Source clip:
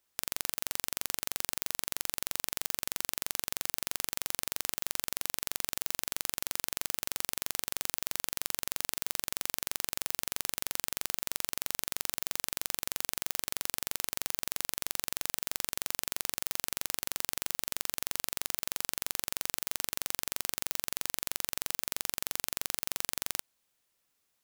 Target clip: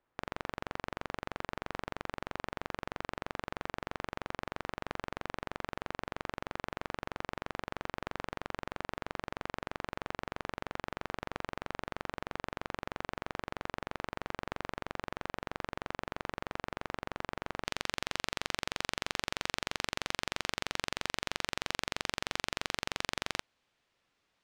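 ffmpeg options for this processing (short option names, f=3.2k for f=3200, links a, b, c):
-af "asetnsamples=n=441:p=0,asendcmd='17.65 lowpass f 3500',lowpass=1.4k,volume=6dB"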